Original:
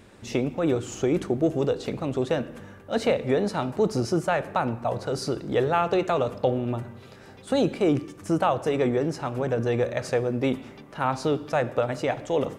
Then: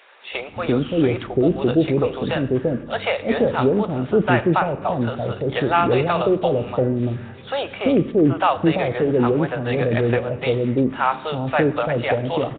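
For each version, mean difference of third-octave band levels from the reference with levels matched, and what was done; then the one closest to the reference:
7.0 dB: high-shelf EQ 2,500 Hz +5 dB
multiband delay without the direct sound highs, lows 340 ms, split 580 Hz
level +7 dB
Nellymoser 16 kbit/s 8,000 Hz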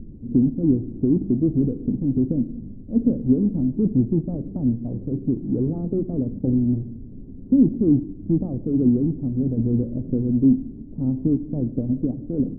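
14.5 dB: each half-wave held at its own peak
background noise brown −38 dBFS
transistor ladder low-pass 300 Hz, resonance 55%
level +8.5 dB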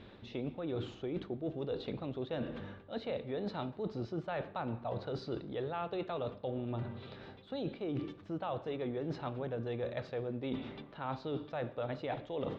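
5.0 dB: high-shelf EQ 2,300 Hz −11 dB
reversed playback
downward compressor 12 to 1, threshold −33 dBFS, peak gain reduction 16 dB
reversed playback
transistor ladder low-pass 4,100 Hz, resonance 65%
level +9.5 dB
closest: third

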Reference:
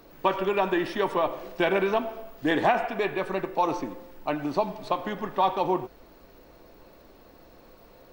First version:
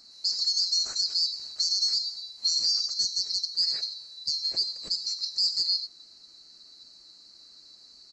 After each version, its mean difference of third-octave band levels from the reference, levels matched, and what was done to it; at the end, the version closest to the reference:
19.5 dB: neighbouring bands swapped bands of 4,000 Hz
brickwall limiter −16 dBFS, peak gain reduction 6 dB
downsampling to 22,050 Hz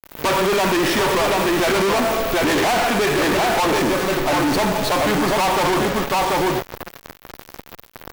12.5 dB: tuned comb filter 140 Hz, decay 1.1 s, harmonics all, mix 50%
on a send: single-tap delay 737 ms −6 dB
on the sum: fuzz pedal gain 55 dB, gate −50 dBFS
level −3.5 dB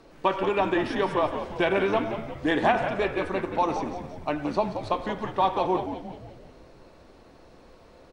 4.0 dB: low-pass filter 11,000 Hz 24 dB per octave
echo with shifted repeats 176 ms, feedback 53%, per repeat −84 Hz, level −9 dB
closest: third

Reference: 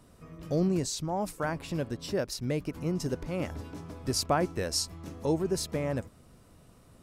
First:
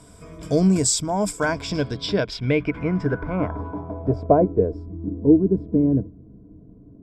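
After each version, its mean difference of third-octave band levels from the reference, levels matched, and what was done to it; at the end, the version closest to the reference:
8.5 dB: EQ curve with evenly spaced ripples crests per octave 1.7, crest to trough 10 dB
low-pass filter sweep 8,400 Hz → 310 Hz, 0:01.24–0:04.95
level +7.5 dB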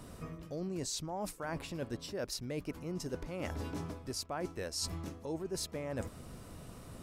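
6.0 dB: dynamic equaliser 140 Hz, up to −4 dB, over −42 dBFS, Q 0.78
reversed playback
downward compressor 12 to 1, threshold −43 dBFS, peak gain reduction 21.5 dB
reversed playback
level +7.5 dB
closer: second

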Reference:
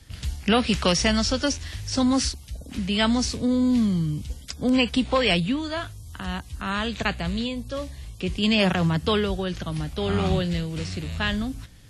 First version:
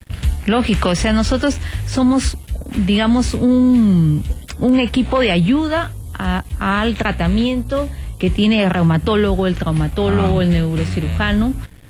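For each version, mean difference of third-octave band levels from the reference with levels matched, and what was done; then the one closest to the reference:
3.5 dB: parametric band 5,400 Hz −14 dB 1.2 octaves
dead-zone distortion −54 dBFS
boost into a limiter +18.5 dB
level −6 dB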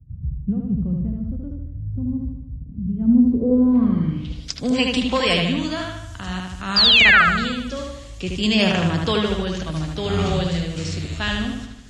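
9.0 dB: low-pass filter sweep 150 Hz → 7,100 Hz, 0:02.94–0:04.60
sound drawn into the spectrogram fall, 0:06.76–0:07.22, 1,200–5,000 Hz −14 dBFS
bucket-brigade delay 76 ms, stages 2,048, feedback 55%, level −3 dB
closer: first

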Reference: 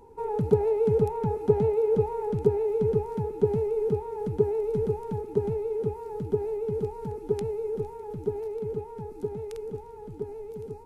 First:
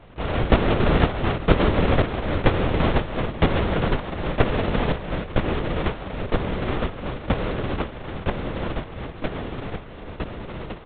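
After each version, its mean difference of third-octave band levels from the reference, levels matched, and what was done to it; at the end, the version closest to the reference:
13.0 dB: samples sorted by size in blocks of 128 samples
linear-prediction vocoder at 8 kHz whisper
level +5 dB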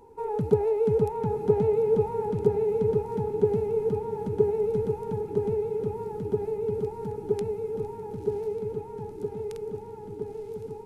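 2.5 dB: low-shelf EQ 71 Hz −6.5 dB
feedback delay with all-pass diffusion 979 ms, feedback 60%, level −10.5 dB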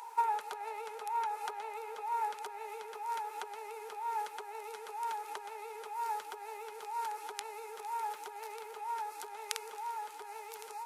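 17.5 dB: downward compressor 5 to 1, threshold −34 dBFS, peak gain reduction 17.5 dB
high-pass filter 1,000 Hz 24 dB per octave
level +16 dB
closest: second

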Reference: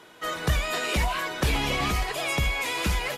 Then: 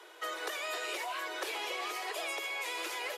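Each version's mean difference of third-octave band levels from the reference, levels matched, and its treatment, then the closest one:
8.0 dB: Butterworth high-pass 330 Hz 96 dB per octave
downward compressor, threshold −32 dBFS, peak gain reduction 8 dB
level −2.5 dB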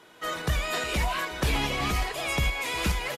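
1.0 dB: shaped tremolo saw up 2.4 Hz, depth 35%
on a send: single-tap delay 354 ms −18.5 dB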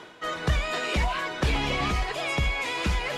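3.0 dB: reversed playback
upward compression, threshold −28 dBFS
reversed playback
high-frequency loss of the air 66 metres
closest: second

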